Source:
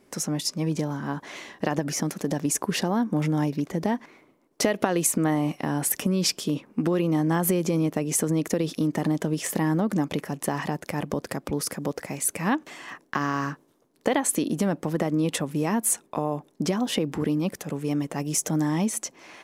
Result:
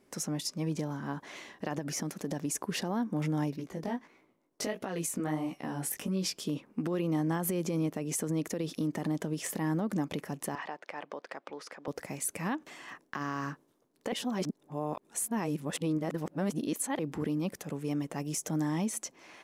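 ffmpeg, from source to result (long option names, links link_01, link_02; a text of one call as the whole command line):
ffmpeg -i in.wav -filter_complex "[0:a]asettb=1/sr,asplit=3[link_01][link_02][link_03];[link_01]atrim=end=3.564[link_04];[link_02]atrim=start=3.56:end=6.4,asetpts=PTS-STARTPTS,afade=type=in:duration=0.004:curve=qsin,afade=type=out:start_time=2.836:duration=0.004:curve=qsin,flanger=delay=15.5:depth=5.6:speed=1.5[link_05];[link_03]atrim=start=6.396[link_06];[link_04][link_05]acrossfade=duration=0.004:curve1=hsin:curve2=qsin[link_07];[link_07][link_06]acrossfade=duration=0.004:curve1=qsin:curve2=hsin,asettb=1/sr,asplit=3[link_08][link_09][link_10];[link_08]atrim=end=10.554[link_11];[link_09]atrim=start=10.55:end=11.88,asetpts=PTS-STARTPTS,afade=type=in:duration=0.004:curve=qsin,afade=type=out:start_time=1.326:duration=0.004:curve=qsin,highpass=590,lowpass=3400[link_12];[link_10]atrim=start=11.876[link_13];[link_11][link_12]acrossfade=duration=0.004:curve1=hsin:curve2=qsin[link_14];[link_14][link_13]acrossfade=duration=0.004:curve1=qsin:curve2=hsin,asplit=3[link_15][link_16][link_17];[link_15]atrim=end=14.122[link_18];[link_16]atrim=start=14.118:end=16.992,asetpts=PTS-STARTPTS,areverse[link_19];[link_17]atrim=start=16.988[link_20];[link_18][link_19]acrossfade=duration=0.004:curve1=hsin:curve2=hsin[link_21];[link_21][link_20]acrossfade=duration=0.004:curve1=hsin:curve2=hsin,alimiter=limit=-16dB:level=0:latency=1:release=95,volume=-6.5dB" out.wav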